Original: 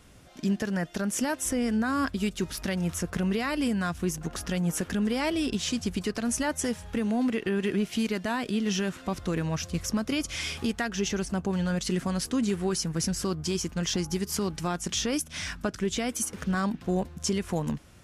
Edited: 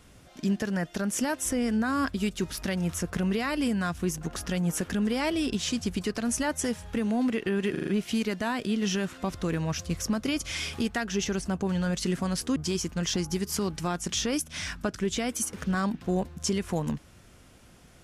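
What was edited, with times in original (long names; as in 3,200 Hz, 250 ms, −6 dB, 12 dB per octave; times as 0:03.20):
0:07.71: stutter 0.04 s, 5 plays
0:12.40–0:13.36: remove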